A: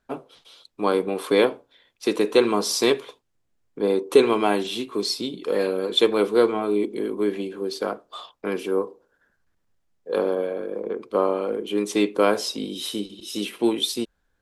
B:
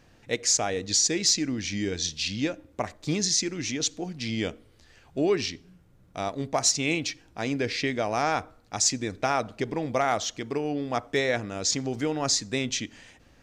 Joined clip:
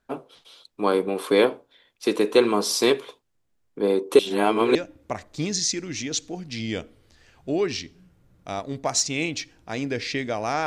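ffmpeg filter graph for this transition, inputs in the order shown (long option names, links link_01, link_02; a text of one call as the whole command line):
ffmpeg -i cue0.wav -i cue1.wav -filter_complex "[0:a]apad=whole_dur=10.66,atrim=end=10.66,asplit=2[link_01][link_02];[link_01]atrim=end=4.192[link_03];[link_02]atrim=start=4.188:end=4.752,asetpts=PTS-STARTPTS,areverse[link_04];[1:a]atrim=start=2.438:end=8.35[link_05];[link_03][link_04]acrossfade=duration=0.004:curve1=hsin:curve2=hsin[link_06];[link_06][link_05]acrossfade=duration=0.004:curve1=hsin:curve2=hsin" out.wav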